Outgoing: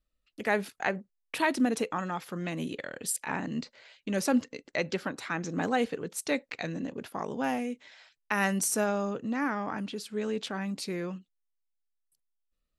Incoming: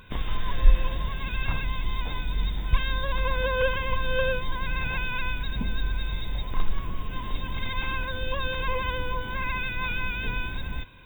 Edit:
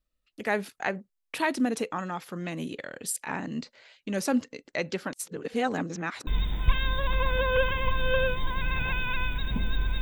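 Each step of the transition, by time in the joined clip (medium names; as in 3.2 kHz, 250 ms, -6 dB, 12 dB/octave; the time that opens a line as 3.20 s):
outgoing
5.13–6.27 s: reverse
6.27 s: go over to incoming from 2.32 s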